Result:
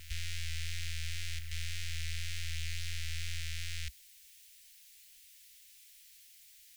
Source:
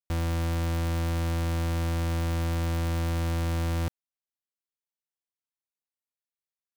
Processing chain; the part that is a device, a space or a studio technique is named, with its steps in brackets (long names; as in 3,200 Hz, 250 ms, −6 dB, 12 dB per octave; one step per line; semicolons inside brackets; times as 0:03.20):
worn cassette (low-pass filter 8,400 Hz 12 dB per octave; tape wow and flutter 40 cents; tape dropouts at 0:01.39, 120 ms −6 dB; white noise bed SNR 30 dB)
inverse Chebyshev band-stop filter 110–1,100 Hz, stop band 40 dB
backwards echo 478 ms −12 dB
level +1.5 dB